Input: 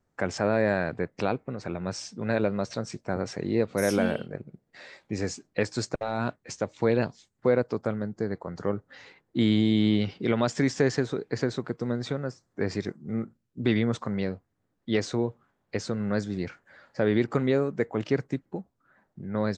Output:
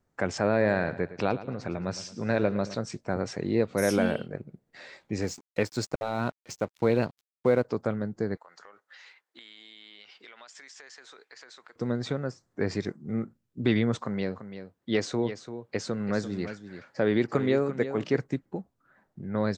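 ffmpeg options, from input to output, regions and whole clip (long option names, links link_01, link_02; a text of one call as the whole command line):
ffmpeg -i in.wav -filter_complex "[0:a]asettb=1/sr,asplit=3[link_01][link_02][link_03];[link_01]atrim=end=0.504[link_04];[link_02]atrim=start=0.5:end=2.75,asetpts=PTS-STARTPTS,afade=type=in:duration=0.004:curve=qsin,afade=type=out:start_time=2.246:duration=0.004:curve=qsin,lowpass=7300,aecho=1:1:110|220|330|440:0.178|0.0782|0.0344|0.0151,atrim=end_sample=99225[link_05];[link_03]atrim=start=2.746[link_06];[link_04][link_05]acrossfade=duration=0.004:curve1=hsin:curve2=qsin[link_07];[link_07][link_06]acrossfade=duration=0.004:curve1=qsin:curve2=hsin,asettb=1/sr,asplit=3[link_08][link_09][link_10];[link_08]atrim=end=5.224[link_11];[link_09]atrim=start=5.22:end=7.65,asetpts=PTS-STARTPTS,afade=type=in:duration=0.004:curve=qsin,afade=type=out:start_time=2.426:duration=0.004:curve=qsin,bandreject=frequency=1700:width=14,aeval=exprs='sgn(val(0))*max(abs(val(0))-0.00398,0)':channel_layout=same[link_12];[link_10]atrim=start=7.646[link_13];[link_11][link_12]acrossfade=duration=0.004:curve1=hsin:curve2=qsin[link_14];[link_14][link_13]acrossfade=duration=0.004:curve1=qsin:curve2=hsin,asettb=1/sr,asplit=3[link_15][link_16][link_17];[link_15]atrim=end=8.374[link_18];[link_16]atrim=start=8.37:end=11.76,asetpts=PTS-STARTPTS,afade=type=in:duration=0.004:curve=qsin,afade=type=out:start_time=3.386:duration=0.004:curve=qsin,highpass=1200,acompressor=threshold=-46dB:ratio=6:attack=3.2:release=140:knee=1:detection=peak[link_19];[link_17]atrim=start=11.756[link_20];[link_18][link_19]acrossfade=duration=0.004:curve1=hsin:curve2=qsin[link_21];[link_21][link_20]acrossfade=duration=0.004:curve1=qsin:curve2=hsin,asettb=1/sr,asplit=3[link_22][link_23][link_24];[link_22]atrim=end=14.014[link_25];[link_23]atrim=start=14.01:end=18.18,asetpts=PTS-STARTPTS,afade=type=in:duration=0.004:curve=qsin,afade=type=out:start_time=4.166:duration=0.004:curve=qsin,highpass=frequency=130:poles=1,aecho=1:1:340:0.282,atrim=end_sample=183897[link_26];[link_24]atrim=start=18.176[link_27];[link_25][link_26]acrossfade=duration=0.004:curve1=hsin:curve2=qsin[link_28];[link_28][link_27]acrossfade=duration=0.004:curve1=qsin:curve2=hsin" out.wav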